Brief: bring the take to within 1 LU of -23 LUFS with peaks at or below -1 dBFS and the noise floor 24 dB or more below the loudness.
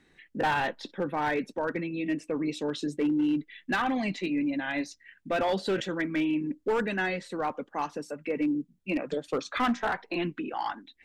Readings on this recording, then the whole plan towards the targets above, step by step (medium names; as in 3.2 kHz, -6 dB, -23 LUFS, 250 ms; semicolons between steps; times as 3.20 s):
clipped samples 1.3%; clipping level -21.5 dBFS; loudness -30.5 LUFS; peak level -21.5 dBFS; loudness target -23.0 LUFS
-> clip repair -21.5 dBFS; trim +7.5 dB